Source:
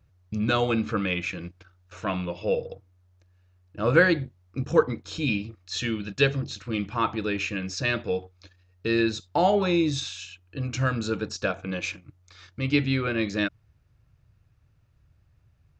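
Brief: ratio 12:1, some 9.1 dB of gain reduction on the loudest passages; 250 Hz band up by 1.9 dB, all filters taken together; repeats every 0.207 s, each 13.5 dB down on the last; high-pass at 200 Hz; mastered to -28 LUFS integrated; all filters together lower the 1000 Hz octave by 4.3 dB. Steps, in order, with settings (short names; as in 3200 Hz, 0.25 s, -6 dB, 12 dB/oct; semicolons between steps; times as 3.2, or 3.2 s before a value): HPF 200 Hz; bell 250 Hz +5 dB; bell 1000 Hz -6.5 dB; compressor 12:1, threshold -23 dBFS; feedback echo 0.207 s, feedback 21%, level -13.5 dB; gain +2.5 dB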